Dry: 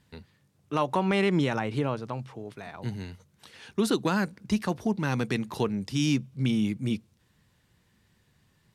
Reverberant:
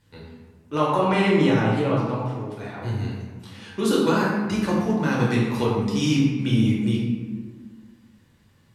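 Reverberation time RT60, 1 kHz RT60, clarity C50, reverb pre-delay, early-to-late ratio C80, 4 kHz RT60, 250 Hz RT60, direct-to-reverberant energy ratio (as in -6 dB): 1.5 s, 1.5 s, 0.0 dB, 4 ms, 2.5 dB, 0.80 s, 2.0 s, -6.0 dB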